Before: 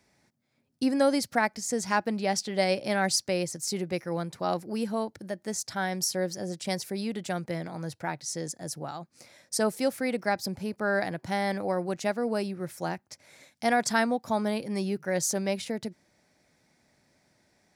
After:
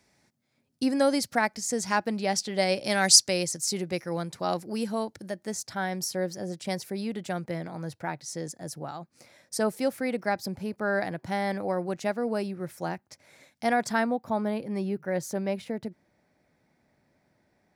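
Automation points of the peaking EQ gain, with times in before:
peaking EQ 7 kHz 2.3 oct
2.71 s +2 dB
3.02 s +14 dB
3.69 s +3.5 dB
5.27 s +3.5 dB
5.69 s -4 dB
13.67 s -4 dB
14.24 s -12.5 dB

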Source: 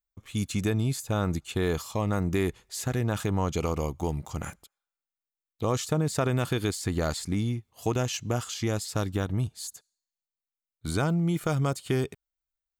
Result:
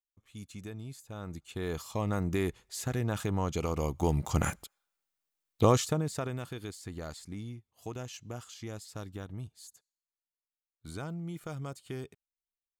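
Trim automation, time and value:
1.10 s -16 dB
1.97 s -4 dB
3.69 s -4 dB
4.37 s +6 dB
5.63 s +6 dB
5.99 s -5 dB
6.49 s -13 dB

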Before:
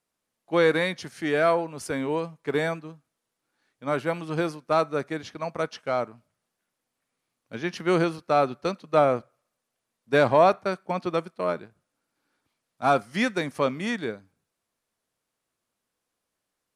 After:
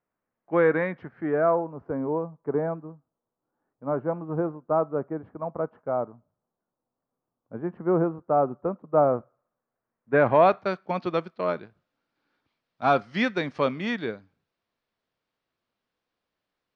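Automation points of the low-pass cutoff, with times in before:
low-pass 24 dB/octave
0.83 s 1.9 kHz
1.72 s 1.1 kHz
8.87 s 1.1 kHz
10.14 s 1.9 kHz
10.61 s 4.6 kHz

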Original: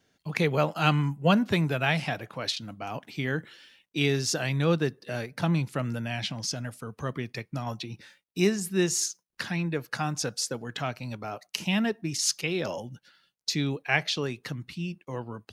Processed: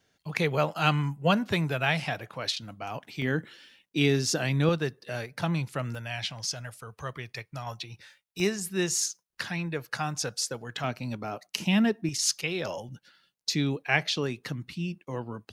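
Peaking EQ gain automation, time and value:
peaking EQ 250 Hz 1.3 oct
-4.5 dB
from 3.22 s +3.5 dB
from 4.69 s -6 dB
from 5.95 s -14.5 dB
from 8.40 s -6 dB
from 10.84 s +4 dB
from 12.09 s -5.5 dB
from 12.89 s +1.5 dB

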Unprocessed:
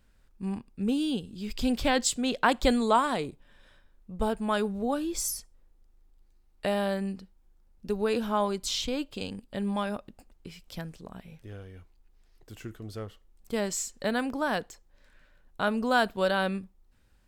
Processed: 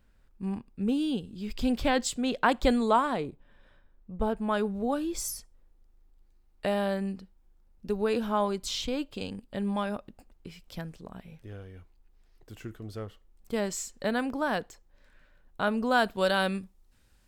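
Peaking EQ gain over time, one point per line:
peaking EQ 8.6 kHz 2.6 oct
2.89 s -5.5 dB
3.29 s -13 dB
4.23 s -13 dB
4.87 s -3.5 dB
15.91 s -3.5 dB
16.33 s +6 dB

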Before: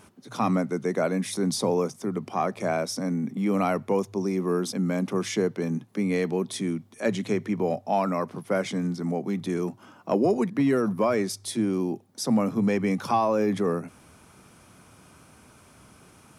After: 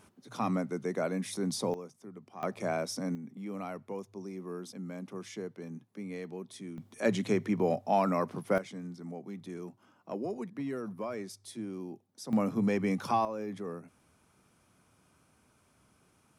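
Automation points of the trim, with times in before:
-7 dB
from 1.74 s -18.5 dB
from 2.43 s -6 dB
from 3.15 s -15 dB
from 6.78 s -2.5 dB
from 8.58 s -14 dB
from 12.33 s -5 dB
from 13.25 s -14 dB

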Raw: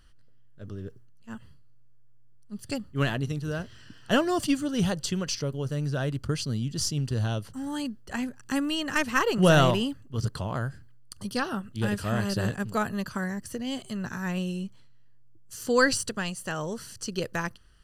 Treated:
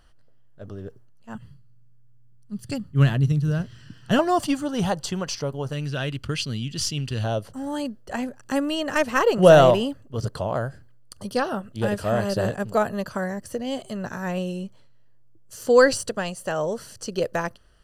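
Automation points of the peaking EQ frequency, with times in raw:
peaking EQ +11.5 dB 1.1 oct
710 Hz
from 1.35 s 140 Hz
from 4.19 s 820 Hz
from 5.73 s 2.7 kHz
from 7.24 s 600 Hz

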